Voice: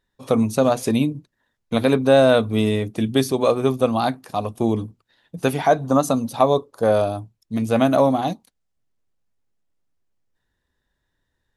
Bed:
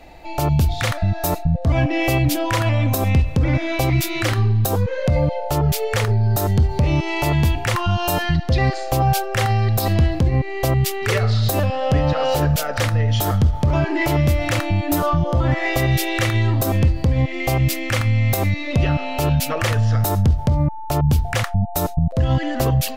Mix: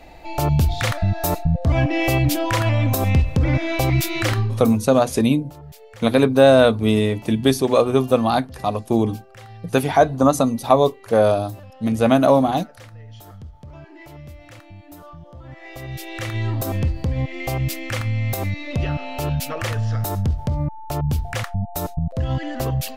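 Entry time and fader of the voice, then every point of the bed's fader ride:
4.30 s, +2.0 dB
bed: 0:04.35 −0.5 dB
0:04.92 −22.5 dB
0:15.41 −22.5 dB
0:16.46 −5 dB

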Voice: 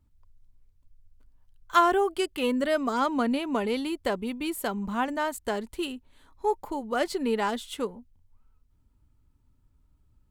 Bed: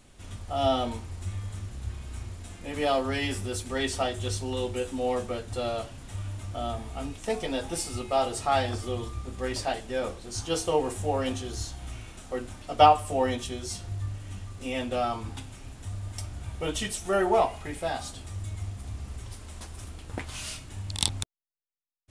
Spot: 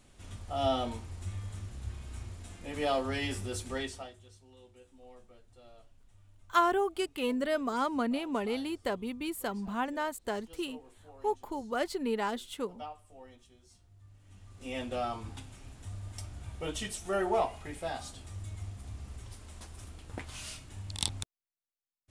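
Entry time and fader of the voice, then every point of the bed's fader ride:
4.80 s, −5.0 dB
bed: 0:03.74 −4.5 dB
0:04.28 −26.5 dB
0:13.94 −26.5 dB
0:14.73 −6 dB

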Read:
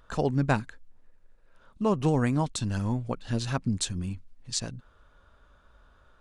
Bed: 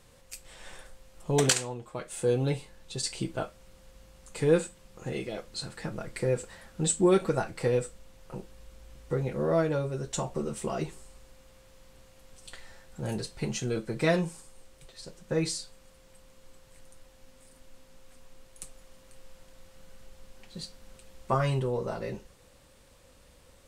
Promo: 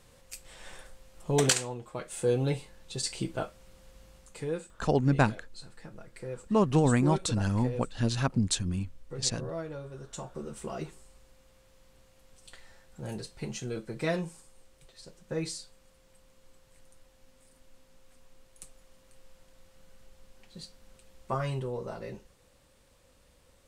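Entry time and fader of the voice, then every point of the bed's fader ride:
4.70 s, +1.0 dB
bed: 0:04.15 −0.5 dB
0:04.55 −11.5 dB
0:09.78 −11.5 dB
0:10.75 −5 dB

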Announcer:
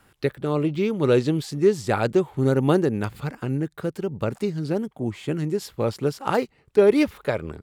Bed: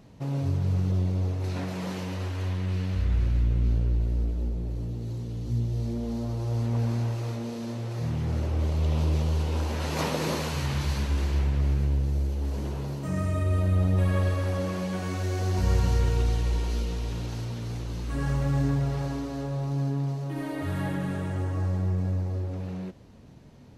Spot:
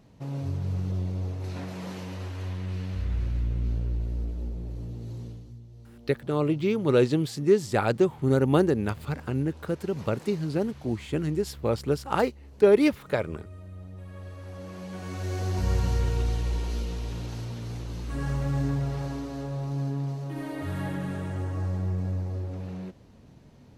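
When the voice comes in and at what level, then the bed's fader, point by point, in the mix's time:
5.85 s, −2.0 dB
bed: 0:05.27 −4 dB
0:05.59 −19.5 dB
0:14.04 −19.5 dB
0:15.33 −2 dB

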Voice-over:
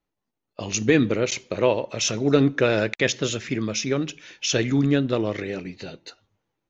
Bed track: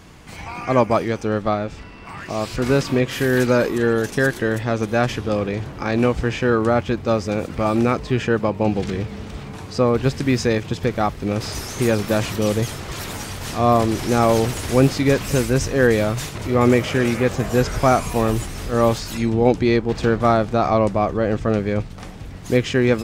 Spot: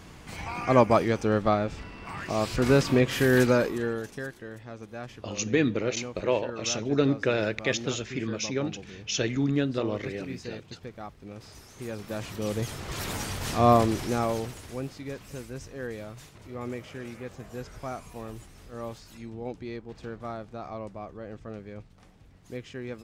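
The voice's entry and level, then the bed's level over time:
4.65 s, −5.5 dB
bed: 0:03.41 −3 dB
0:04.38 −20.5 dB
0:11.71 −20.5 dB
0:13.09 −3 dB
0:13.72 −3 dB
0:14.84 −20.5 dB

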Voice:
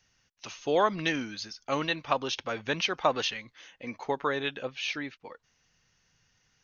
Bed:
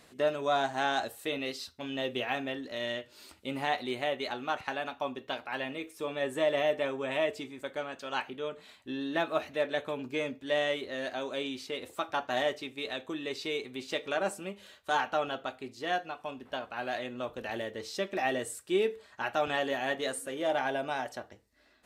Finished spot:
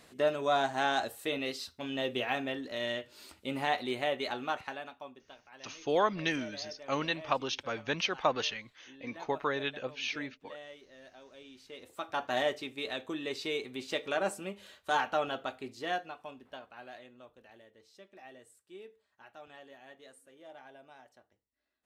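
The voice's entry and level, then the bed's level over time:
5.20 s, −3.0 dB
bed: 0:04.44 0 dB
0:05.36 −18.5 dB
0:11.39 −18.5 dB
0:12.24 −0.5 dB
0:15.75 −0.5 dB
0:17.59 −21.5 dB

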